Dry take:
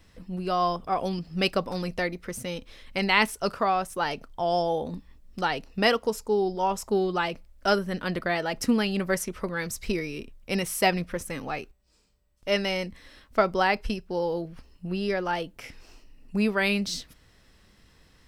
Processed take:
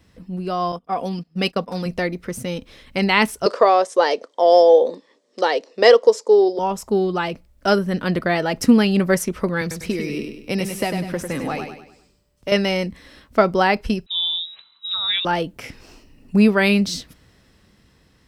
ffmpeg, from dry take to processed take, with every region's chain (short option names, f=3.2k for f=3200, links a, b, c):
-filter_complex "[0:a]asettb=1/sr,asplit=3[a][b][c];[a]atrim=end=0.724[d];[b]atrim=start=0.72:end=1.86,asetpts=PTS-STARTPTS,afade=t=in:d=0.004:c=qsin,afade=t=out:st=1.136:d=0.004:c=qsin,agate=range=-19dB:threshold=-35dB:ratio=16:release=100:detection=peak,lowshelf=f=100:g=-11,aecho=1:1:4.2:0.33,atrim=end_sample=50274[e];[c]atrim=start=1.856[f];[d][e]acrossfade=d=0.004:c1=hsin:c2=qsin[g];[g][f]acrossfade=d=0.004:c1=qsin:c2=hsin,asettb=1/sr,asplit=3[h][i][j];[h]atrim=end=3.464[k];[i]atrim=start=3.46:end=6.59,asetpts=PTS-STARTPTS,afade=t=in:d=0.004:c=qsin,afade=t=out:st=3.126:d=0.004:c=qsin,acontrast=84,highpass=f=380:w=0.5412,highpass=f=380:w=1.3066,equalizer=f=510:t=q:w=4:g=7,equalizer=f=800:t=q:w=4:g=-5,equalizer=f=1.4k:t=q:w=4:g=-8,equalizer=f=2.6k:t=q:w=4:g=-8,lowpass=f=7.6k:w=0.5412,lowpass=f=7.6k:w=1.3066[l];[j]atrim=start=6.586[m];[k][l]acrossfade=d=0.004:c1=hsin:c2=qsin[n];[n][m]acrossfade=d=0.004:c1=qsin:c2=hsin,asettb=1/sr,asplit=3[o][p][q];[o]atrim=end=9.614[r];[p]atrim=start=9.61:end=12.52,asetpts=PTS-STARTPTS,afade=t=in:d=0.004:c=qsin,afade=t=out:st=2.906:d=0.004:c=qsin,acrossover=split=110|3900[s][t][u];[s]acompressor=threshold=-50dB:ratio=4[v];[t]acompressor=threshold=-31dB:ratio=4[w];[u]acompressor=threshold=-42dB:ratio=4[x];[v][w][x]amix=inputs=3:normalize=0,aecho=1:1:99|198|297|396|495:0.473|0.199|0.0835|0.0351|0.0147,atrim=end_sample=128331[y];[q]atrim=start=12.516[z];[r][y]acrossfade=d=0.004:c1=hsin:c2=qsin[aa];[aa][z]acrossfade=d=0.004:c1=qsin:c2=hsin,asettb=1/sr,asplit=3[ab][ac][ad];[ab]atrim=end=14.064[ae];[ac]atrim=start=14.06:end=15.25,asetpts=PTS-STARTPTS,afade=t=in:d=0.004:c=qsin,afade=t=out:st=1.186:d=0.004:c=qsin,highpass=f=94:p=1,lowpass=f=3.4k:t=q:w=0.5098,lowpass=f=3.4k:t=q:w=0.6013,lowpass=f=3.4k:t=q:w=0.9,lowpass=f=3.4k:t=q:w=2.563,afreqshift=-4000[af];[ad]atrim=start=15.246[ag];[ae][af]acrossfade=d=0.004:c1=hsin:c2=qsin[ah];[ah][ag]acrossfade=d=0.004:c1=qsin:c2=hsin,highpass=f=130:p=1,lowshelf=f=370:g=8.5,dynaudnorm=f=360:g=9:m=7.5dB"